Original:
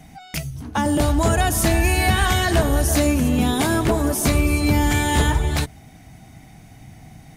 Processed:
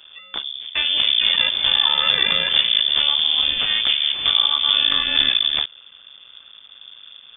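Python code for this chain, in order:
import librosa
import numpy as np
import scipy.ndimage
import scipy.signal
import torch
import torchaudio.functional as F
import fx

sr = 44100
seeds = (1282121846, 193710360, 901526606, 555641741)

y = np.maximum(x, 0.0)
y = fx.freq_invert(y, sr, carrier_hz=3500)
y = y * librosa.db_to_amplitude(1.5)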